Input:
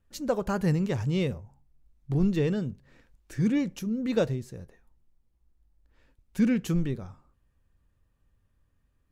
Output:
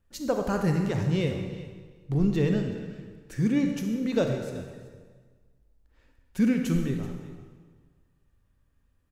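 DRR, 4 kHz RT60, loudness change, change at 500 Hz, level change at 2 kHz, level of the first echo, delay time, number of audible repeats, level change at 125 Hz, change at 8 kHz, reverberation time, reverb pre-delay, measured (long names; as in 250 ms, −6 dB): 4.0 dB, 1.3 s, +1.0 dB, +1.0 dB, +1.5 dB, −18.0 dB, 380 ms, 1, +1.0 dB, +1.5 dB, 1.6 s, 33 ms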